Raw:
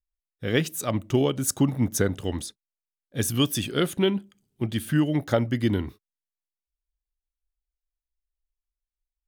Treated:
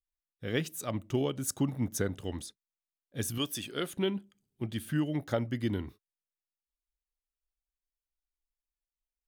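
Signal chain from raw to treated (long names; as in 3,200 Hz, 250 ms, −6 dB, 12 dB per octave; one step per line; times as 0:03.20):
0:03.38–0:03.94: low-shelf EQ 200 Hz −11 dB
level −8 dB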